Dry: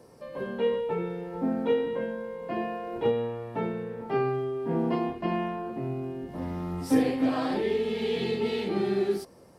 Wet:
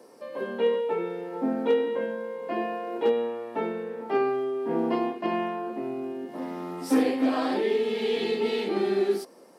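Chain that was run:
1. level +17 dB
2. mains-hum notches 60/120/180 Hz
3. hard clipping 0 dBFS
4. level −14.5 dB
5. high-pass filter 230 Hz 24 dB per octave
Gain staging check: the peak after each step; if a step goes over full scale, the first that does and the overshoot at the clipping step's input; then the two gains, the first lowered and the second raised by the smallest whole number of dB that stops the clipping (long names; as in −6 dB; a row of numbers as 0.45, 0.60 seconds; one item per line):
+5.0, +5.0, 0.0, −14.5, −12.0 dBFS
step 1, 5.0 dB
step 1 +12 dB, step 4 −9.5 dB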